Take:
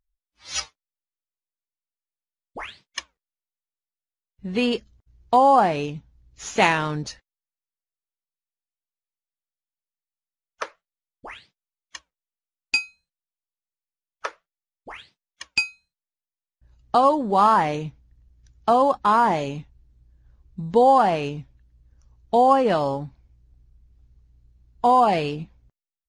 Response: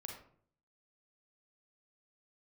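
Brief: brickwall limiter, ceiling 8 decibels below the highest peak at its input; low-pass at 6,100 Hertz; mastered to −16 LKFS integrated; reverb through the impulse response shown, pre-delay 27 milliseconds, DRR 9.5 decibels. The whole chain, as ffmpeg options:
-filter_complex "[0:a]lowpass=6100,alimiter=limit=-12dB:level=0:latency=1,asplit=2[link_01][link_02];[1:a]atrim=start_sample=2205,adelay=27[link_03];[link_02][link_03]afir=irnorm=-1:irlink=0,volume=-6dB[link_04];[link_01][link_04]amix=inputs=2:normalize=0,volume=7.5dB"

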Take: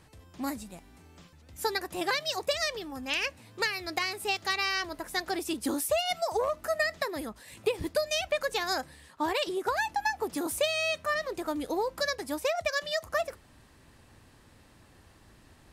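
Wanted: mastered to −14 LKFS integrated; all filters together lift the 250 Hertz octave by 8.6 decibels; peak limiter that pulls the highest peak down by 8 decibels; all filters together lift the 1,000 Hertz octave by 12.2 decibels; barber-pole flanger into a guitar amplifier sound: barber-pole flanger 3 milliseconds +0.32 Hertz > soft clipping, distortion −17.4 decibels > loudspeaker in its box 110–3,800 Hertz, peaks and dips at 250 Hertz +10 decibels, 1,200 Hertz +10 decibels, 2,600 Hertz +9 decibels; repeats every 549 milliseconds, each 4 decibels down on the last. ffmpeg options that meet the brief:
ffmpeg -i in.wav -filter_complex "[0:a]equalizer=frequency=250:width_type=o:gain=4.5,equalizer=frequency=1000:width_type=o:gain=9,alimiter=limit=-19dB:level=0:latency=1,aecho=1:1:549|1098|1647|2196|2745|3294|3843|4392|4941:0.631|0.398|0.25|0.158|0.0994|0.0626|0.0394|0.0249|0.0157,asplit=2[link_01][link_02];[link_02]adelay=3,afreqshift=0.32[link_03];[link_01][link_03]amix=inputs=2:normalize=1,asoftclip=threshold=-23dB,highpass=110,equalizer=frequency=250:width_type=q:width=4:gain=10,equalizer=frequency=1200:width_type=q:width=4:gain=10,equalizer=frequency=2600:width_type=q:width=4:gain=9,lowpass=frequency=3800:width=0.5412,lowpass=frequency=3800:width=1.3066,volume=14.5dB" out.wav

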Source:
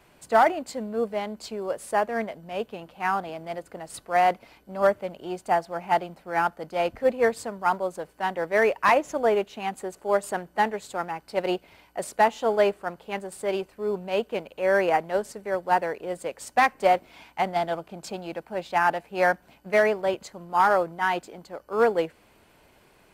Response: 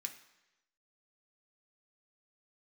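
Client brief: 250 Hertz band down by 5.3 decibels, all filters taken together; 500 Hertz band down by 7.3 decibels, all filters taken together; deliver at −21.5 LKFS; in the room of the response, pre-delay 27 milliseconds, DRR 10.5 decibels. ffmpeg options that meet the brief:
-filter_complex "[0:a]equalizer=frequency=250:width_type=o:gain=-4.5,equalizer=frequency=500:width_type=o:gain=-8.5,asplit=2[link_01][link_02];[1:a]atrim=start_sample=2205,adelay=27[link_03];[link_02][link_03]afir=irnorm=-1:irlink=0,volume=-7.5dB[link_04];[link_01][link_04]amix=inputs=2:normalize=0,volume=8dB"

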